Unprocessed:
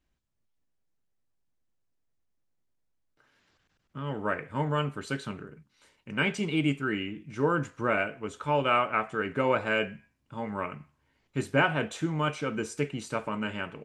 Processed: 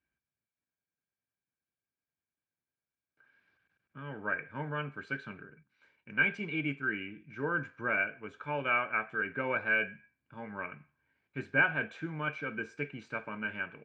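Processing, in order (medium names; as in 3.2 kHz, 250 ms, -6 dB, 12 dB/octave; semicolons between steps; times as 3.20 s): high-pass 88 Hz; distance through air 190 m; small resonant body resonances 1.6/2.3 kHz, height 16 dB, ringing for 25 ms; trim -8.5 dB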